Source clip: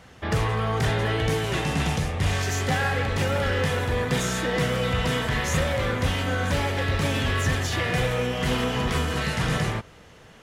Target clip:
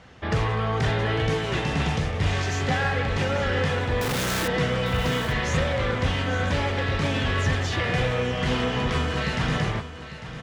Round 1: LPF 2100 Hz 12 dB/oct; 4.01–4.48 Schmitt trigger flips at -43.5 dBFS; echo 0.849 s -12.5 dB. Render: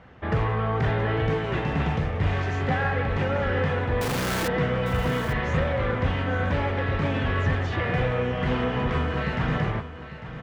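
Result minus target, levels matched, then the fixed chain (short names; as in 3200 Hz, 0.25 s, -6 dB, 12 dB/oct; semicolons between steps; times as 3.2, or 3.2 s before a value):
4000 Hz band -6.5 dB
LPF 5600 Hz 12 dB/oct; 4.01–4.48 Schmitt trigger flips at -43.5 dBFS; echo 0.849 s -12.5 dB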